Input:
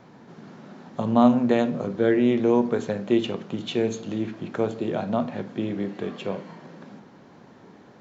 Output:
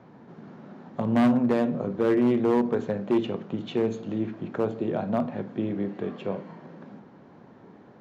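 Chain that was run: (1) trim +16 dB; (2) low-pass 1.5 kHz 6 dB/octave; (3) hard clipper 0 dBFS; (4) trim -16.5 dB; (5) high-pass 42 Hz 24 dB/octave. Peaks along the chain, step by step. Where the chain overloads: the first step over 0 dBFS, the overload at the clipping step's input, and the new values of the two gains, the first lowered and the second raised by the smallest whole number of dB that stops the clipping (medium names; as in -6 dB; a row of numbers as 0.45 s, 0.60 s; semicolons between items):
+10.5 dBFS, +10.0 dBFS, 0.0 dBFS, -16.5 dBFS, -12.0 dBFS; step 1, 10.0 dB; step 1 +6 dB, step 4 -6.5 dB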